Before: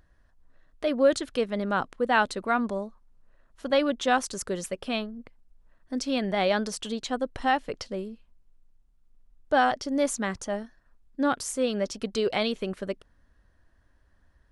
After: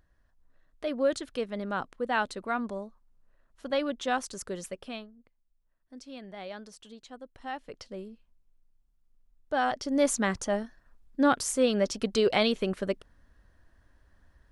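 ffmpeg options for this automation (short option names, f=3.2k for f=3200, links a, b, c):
-af "volume=13dB,afade=t=out:st=4.7:d=0.44:silence=0.281838,afade=t=in:st=7.37:d=0.66:silence=0.316228,afade=t=in:st=9.57:d=0.57:silence=0.375837"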